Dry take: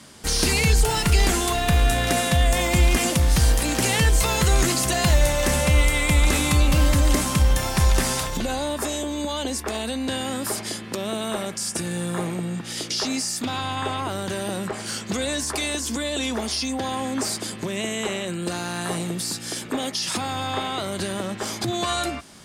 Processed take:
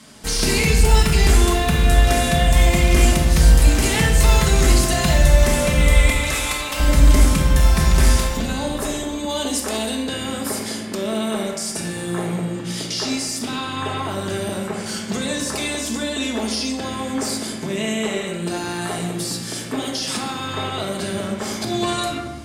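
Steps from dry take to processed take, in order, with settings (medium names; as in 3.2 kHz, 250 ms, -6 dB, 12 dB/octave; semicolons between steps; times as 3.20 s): 6.10–6.80 s: high-pass 630 Hz 12 dB/octave; 9.29–10.02 s: treble shelf 4.6 kHz +7 dB; simulated room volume 750 m³, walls mixed, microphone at 1.5 m; trim -1 dB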